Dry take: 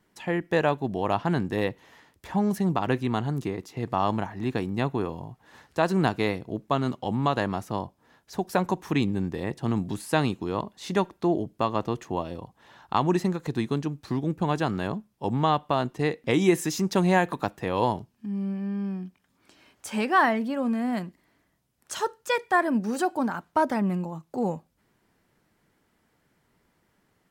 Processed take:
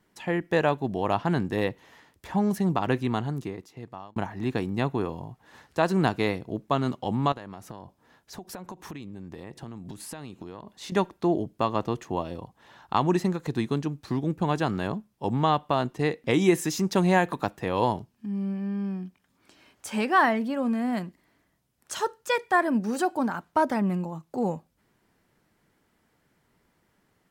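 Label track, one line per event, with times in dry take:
3.070000	4.160000	fade out
7.320000	10.920000	downward compressor 16 to 1, threshold −35 dBFS

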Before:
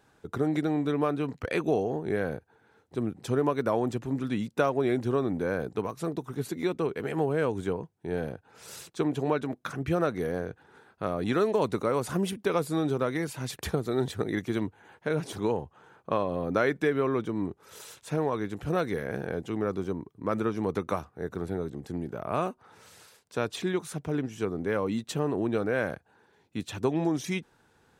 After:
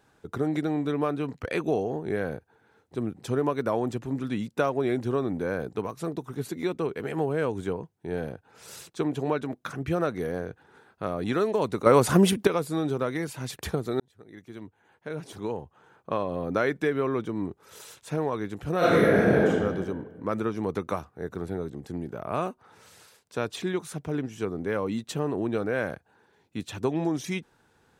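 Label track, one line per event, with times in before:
11.860000	12.470000	clip gain +9.5 dB
14.000000	16.380000	fade in
18.780000	19.470000	thrown reverb, RT60 1.5 s, DRR −12 dB

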